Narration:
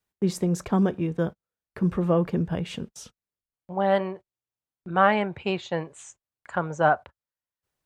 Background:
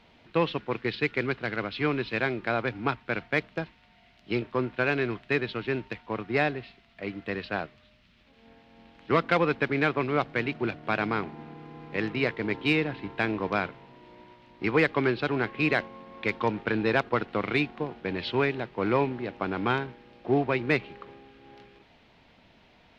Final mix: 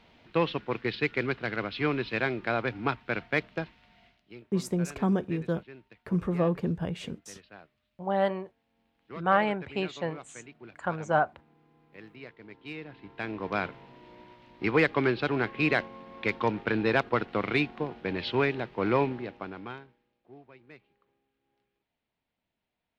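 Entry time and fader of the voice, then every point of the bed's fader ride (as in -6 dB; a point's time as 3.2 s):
4.30 s, -4.0 dB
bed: 4.06 s -1 dB
4.3 s -19 dB
12.56 s -19 dB
13.69 s -0.5 dB
19.12 s -0.5 dB
20.23 s -27 dB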